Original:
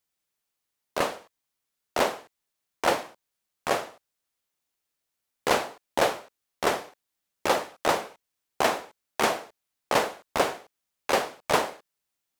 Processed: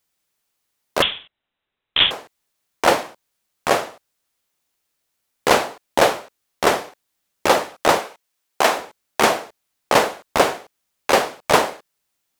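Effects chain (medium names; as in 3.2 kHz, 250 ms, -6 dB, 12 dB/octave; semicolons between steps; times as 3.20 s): 1.02–2.11 s: frequency inversion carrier 3.9 kHz; 7.99–8.77 s: bass shelf 250 Hz -11 dB; trim +8 dB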